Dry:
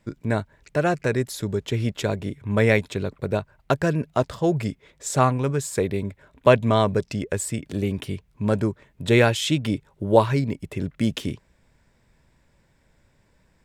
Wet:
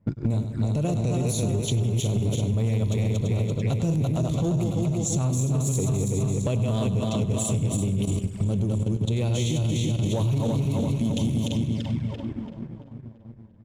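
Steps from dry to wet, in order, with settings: backward echo that repeats 169 ms, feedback 74%, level -3.5 dB; tone controls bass +12 dB, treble +14 dB; 7.80–10.04 s: level held to a coarse grid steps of 17 dB; peak limiter -8 dBFS, peak gain reduction 10 dB; high-pass 140 Hz 6 dB/octave; bass shelf 210 Hz +6 dB; level-controlled noise filter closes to 940 Hz, open at -12 dBFS; feedback delay 98 ms, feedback 45%, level -13.5 dB; touch-sensitive flanger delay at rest 11.1 ms, full sweep at -16 dBFS; waveshaping leveller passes 1; compression 5:1, threshold -23 dBFS, peak gain reduction 12.5 dB

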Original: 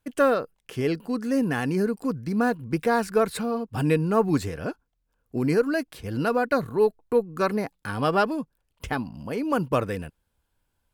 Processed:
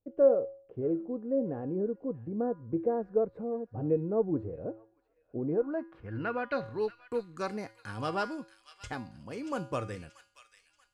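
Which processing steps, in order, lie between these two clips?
low-pass sweep 540 Hz -> 7.4 kHz, 5.45–7.02 s; feedback comb 110 Hz, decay 0.48 s, harmonics odd, mix 70%; on a send: feedback echo behind a high-pass 632 ms, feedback 38%, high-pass 2.4 kHz, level -9 dB; on the sum: trim -1.5 dB

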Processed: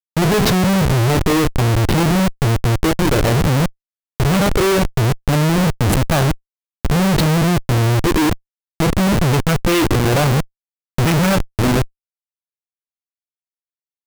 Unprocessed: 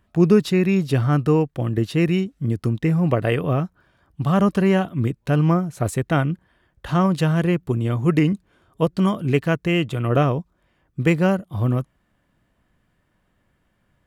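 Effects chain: on a send at -6.5 dB: tone controls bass -8 dB, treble +13 dB + reverberation RT60 0.40 s, pre-delay 3 ms; on the sum: phase shifter stages 4, 0.58 Hz, lowest notch 150–2200 Hz; in parallel at 0 dB: peak limiter -14.5 dBFS, peak gain reduction 10.5 dB; on the sum: treble shelf 9.4 kHz +5 dB; Schmitt trigger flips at -21.5 dBFS; trim +3.5 dB

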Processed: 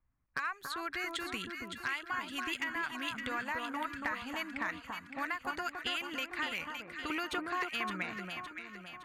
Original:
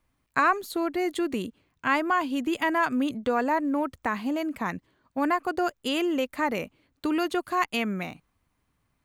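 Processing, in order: level-controlled noise filter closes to 750 Hz, open at -24 dBFS; peaking EQ 450 Hz -14.5 dB 2.8 oct, from 7.10 s -4.5 dB; harmonic-percussive split harmonic -4 dB; peaking EQ 1.8 kHz +10 dB 1.9 oct; compression 4:1, threshold -35 dBFS, peak gain reduction 15.5 dB; hard clipper -26 dBFS, distortion -22 dB; echo whose repeats swap between lows and highs 282 ms, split 1.4 kHz, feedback 69%, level -3 dB

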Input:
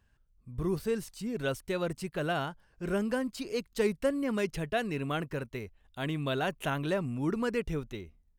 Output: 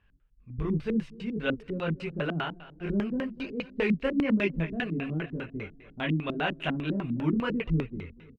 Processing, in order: chorus voices 6, 0.97 Hz, delay 22 ms, depth 3.8 ms; feedback delay 247 ms, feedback 47%, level -19 dB; LFO low-pass square 5 Hz 250–2600 Hz; trim +4 dB

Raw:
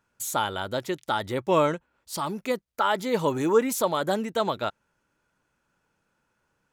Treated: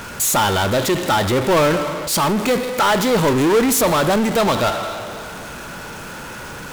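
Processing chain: two-slope reverb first 0.91 s, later 2.6 s, from -24 dB, DRR 15.5 dB; power-law waveshaper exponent 0.35

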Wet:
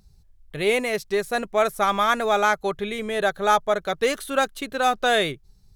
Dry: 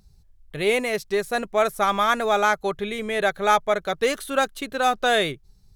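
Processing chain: 3.09–3.78 s: peaking EQ 2.2 kHz -7.5 dB 0.31 oct

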